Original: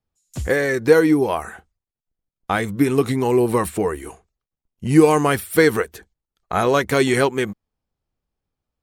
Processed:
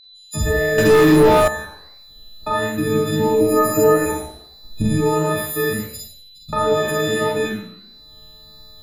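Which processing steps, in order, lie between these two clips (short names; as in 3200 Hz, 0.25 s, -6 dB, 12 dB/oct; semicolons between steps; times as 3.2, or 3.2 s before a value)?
frequency quantiser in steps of 6 st; recorder AGC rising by 41 dB/s; 5.73–6.53 elliptic band-stop 210–4400 Hz, stop band 40 dB; limiter -8 dBFS, peak gain reduction 7.5 dB; 3.4–4.06 comb 6.4 ms, depth 99%; whine 4000 Hz -35 dBFS; flange 1.5 Hz, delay 9.9 ms, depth 7.8 ms, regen +90%; Schroeder reverb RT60 0.5 s, combs from 30 ms, DRR -1.5 dB; 0.78–1.48 sample leveller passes 3; tilt -2 dB/oct; gain -2 dB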